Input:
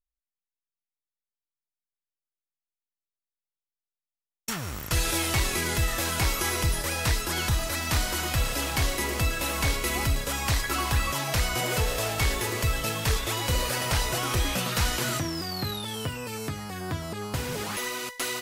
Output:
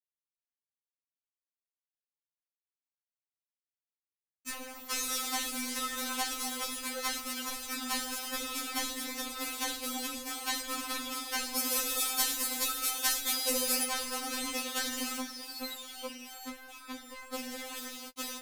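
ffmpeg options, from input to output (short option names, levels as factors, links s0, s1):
-filter_complex "[0:a]asettb=1/sr,asplit=3[s0][s1][s2];[s0]atrim=end=11.564[s3];[s1]atrim=start=11.56:end=13.84,asetpts=PTS-STARTPTS,afade=t=in:d=0.004:c=qsin,afade=t=out:st=2.276:d=0.004:c=qsin,highshelf=f=5800:g=10.5[s4];[s2]atrim=start=13.836[s5];[s3][s4]acrossfade=d=0.004:c1=hsin:c2=qsin[s6];[s6][s5]acrossfade=d=0.004:c1=qsin:c2=hsin,aeval=exprs='sgn(val(0))*max(abs(val(0))-0.0178,0)':c=same,afftfilt=real='re*3.46*eq(mod(b,12),0)':imag='im*3.46*eq(mod(b,12),0)':win_size=2048:overlap=0.75"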